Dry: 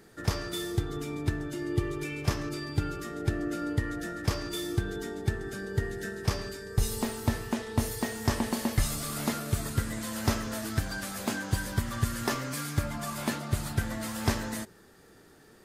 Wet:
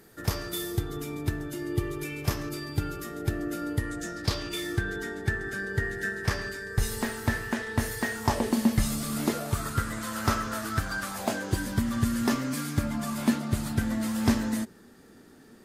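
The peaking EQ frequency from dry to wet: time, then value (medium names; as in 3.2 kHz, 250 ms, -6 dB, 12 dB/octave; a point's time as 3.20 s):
peaking EQ +11 dB 0.55 oct
3.73 s 13 kHz
4.73 s 1.7 kHz
8.15 s 1.7 kHz
8.60 s 210 Hz
9.17 s 210 Hz
9.59 s 1.3 kHz
11.04 s 1.3 kHz
11.68 s 240 Hz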